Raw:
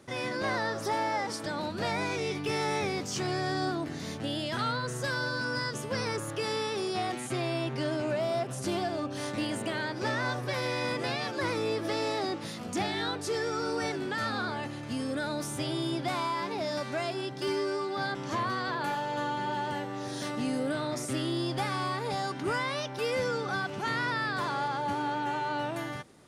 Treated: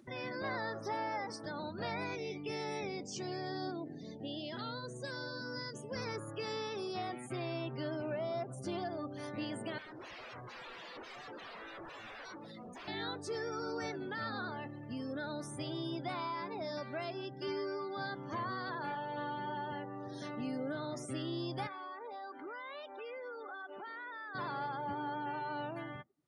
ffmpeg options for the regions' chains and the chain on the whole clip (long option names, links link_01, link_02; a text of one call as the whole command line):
ffmpeg -i in.wav -filter_complex "[0:a]asettb=1/sr,asplit=3[link_01][link_02][link_03];[link_01]atrim=end=2.154[link_04];[link_02]atrim=start=2.15:end=5.96,asetpts=PTS-STARTPTS,afade=type=in:duration=0.004:curve=qsin,afade=type=out:start_time=3.806:duration=0.004:curve=qsin,highpass=140,equalizer=frequency=1300:width=1.2:gain=-6,aecho=1:1:844:0.106,atrim=end_sample=168021[link_05];[link_03]atrim=start=5.956[link_06];[link_04][link_05]acrossfade=duration=0.004:curve1=hsin:curve2=qsin[link_07];[link_07][link_06]acrossfade=duration=0.004:curve1=qsin:curve2=hsin,asettb=1/sr,asplit=3[link_08][link_09][link_10];[link_08]atrim=end=9.784[link_11];[link_09]atrim=start=9.78:end=12.88,asetpts=PTS-STARTPTS,afade=type=in:duration=0.004:curve=qsin,afade=type=out:start_time=3.096:duration=0.004:curve=qsin,bandreject=frequency=50:width_type=h:width=6,bandreject=frequency=100:width_type=h:width=6,bandreject=frequency=150:width_type=h:width=6,bandreject=frequency=200:width_type=h:width=6,bandreject=frequency=250:width_type=h:width=6,aeval=exprs='0.0178*(abs(mod(val(0)/0.0178+3,4)-2)-1)':channel_layout=same,bass=frequency=250:gain=-5,treble=frequency=4000:gain=-2[link_12];[link_10]atrim=start=12.876[link_13];[link_11][link_12]acrossfade=duration=0.004:curve1=hsin:curve2=qsin[link_14];[link_14][link_13]acrossfade=duration=0.004:curve1=qsin:curve2=hsin,asettb=1/sr,asplit=3[link_15][link_16][link_17];[link_15]atrim=end=21.674[link_18];[link_16]atrim=start=21.67:end=24.35,asetpts=PTS-STARTPTS,afade=type=in:duration=0.004:curve=qsin,afade=type=out:start_time=2.676:duration=0.004:curve=qsin,acrossover=split=300 4700:gain=0.0794 1 0.178[link_19][link_20][link_21];[link_19][link_20][link_21]amix=inputs=3:normalize=0,acompressor=threshold=-35dB:ratio=4:attack=3.2:release=140:knee=1:detection=peak[link_22];[link_17]atrim=start=24.346[link_23];[link_18][link_22]acrossfade=duration=0.004:curve1=hsin:curve2=qsin[link_24];[link_24][link_23]acrossfade=duration=0.004:curve1=qsin:curve2=hsin,afftdn=noise_reduction=31:noise_floor=-41,acompressor=mode=upward:threshold=-36dB:ratio=2.5,volume=-7.5dB" out.wav